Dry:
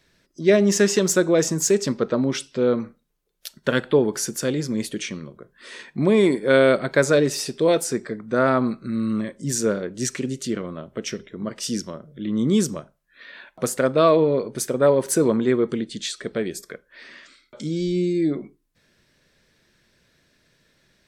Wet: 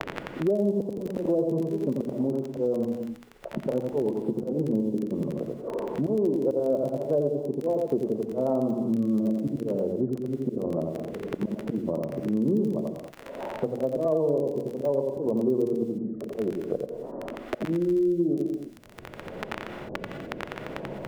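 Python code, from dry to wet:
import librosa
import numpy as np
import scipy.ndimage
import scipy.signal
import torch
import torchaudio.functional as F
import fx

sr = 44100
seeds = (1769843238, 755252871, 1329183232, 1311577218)

p1 = scipy.signal.sosfilt(scipy.signal.butter(8, 900.0, 'lowpass', fs=sr, output='sos'), x)
p2 = fx.low_shelf(p1, sr, hz=340.0, db=-8.0)
p3 = fx.hum_notches(p2, sr, base_hz=60, count=5)
p4 = fx.auto_swell(p3, sr, attack_ms=336.0)
p5 = fx.rotary_switch(p4, sr, hz=7.5, then_hz=0.6, switch_at_s=16.76)
p6 = fx.dmg_crackle(p5, sr, seeds[0], per_s=12.0, level_db=-35.0)
p7 = p6 + fx.echo_single(p6, sr, ms=87, db=-3.5, dry=0)
p8 = fx.rev_gated(p7, sr, seeds[1], gate_ms=230, shape='rising', drr_db=9.0)
p9 = fx.band_squash(p8, sr, depth_pct=100)
y = p9 * librosa.db_to_amplitude(4.5)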